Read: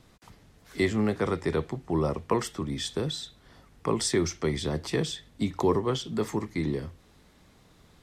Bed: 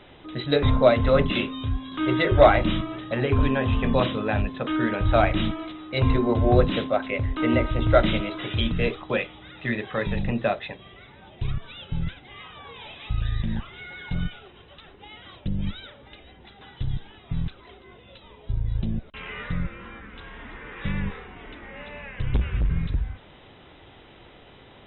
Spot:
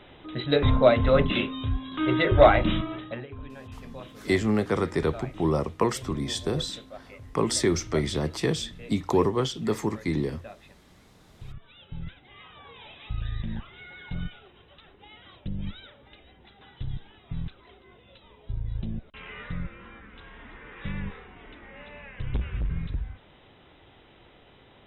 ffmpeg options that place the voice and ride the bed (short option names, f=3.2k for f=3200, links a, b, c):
-filter_complex "[0:a]adelay=3500,volume=2dB[a];[1:a]volume=13.5dB,afade=t=out:st=2.95:d=0.31:silence=0.112202,afade=t=in:st=11.19:d=1.4:silence=0.188365[b];[a][b]amix=inputs=2:normalize=0"